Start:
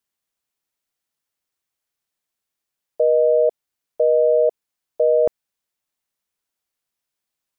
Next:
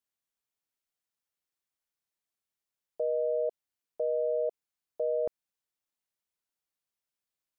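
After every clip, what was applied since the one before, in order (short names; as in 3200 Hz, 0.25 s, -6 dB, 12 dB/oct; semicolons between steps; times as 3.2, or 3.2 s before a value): limiter -14.5 dBFS, peak gain reduction 5 dB; gain -8.5 dB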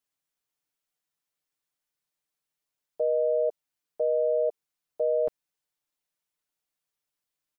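comb 6.7 ms; gain +1.5 dB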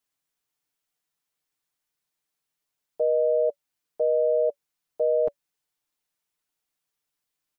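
notch 570 Hz, Q 18; gain +3 dB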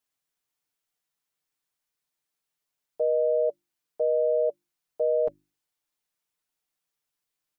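notches 50/100/150/200/250/300/350 Hz; gain -1.5 dB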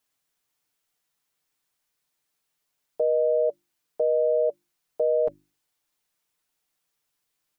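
limiter -22 dBFS, peak gain reduction 5 dB; gain +6 dB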